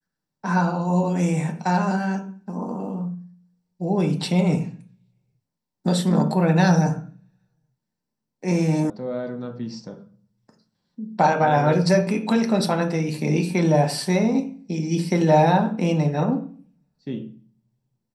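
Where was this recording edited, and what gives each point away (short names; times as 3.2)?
8.9 sound cut off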